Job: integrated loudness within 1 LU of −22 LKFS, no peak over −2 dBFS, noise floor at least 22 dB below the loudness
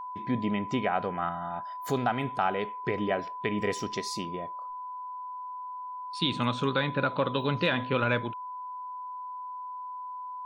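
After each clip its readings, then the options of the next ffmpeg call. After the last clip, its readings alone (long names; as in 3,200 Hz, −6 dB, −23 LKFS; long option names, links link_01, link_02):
interfering tone 1,000 Hz; level of the tone −36 dBFS; integrated loudness −31.5 LKFS; sample peak −13.0 dBFS; target loudness −22.0 LKFS
→ -af "bandreject=frequency=1000:width=30"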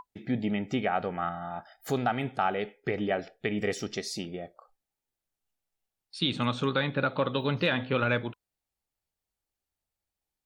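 interfering tone none found; integrated loudness −30.0 LKFS; sample peak −13.5 dBFS; target loudness −22.0 LKFS
→ -af "volume=8dB"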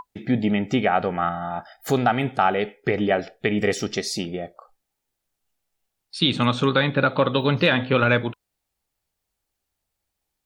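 integrated loudness −22.0 LKFS; sample peak −5.5 dBFS; background noise floor −81 dBFS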